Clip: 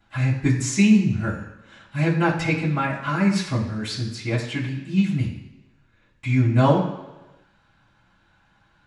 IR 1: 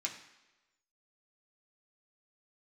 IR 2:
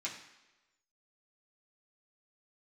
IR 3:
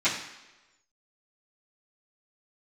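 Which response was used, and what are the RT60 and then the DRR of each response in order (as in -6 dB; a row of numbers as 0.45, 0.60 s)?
3; 1.1, 1.1, 1.1 s; -1.5, -6.5, -15.0 dB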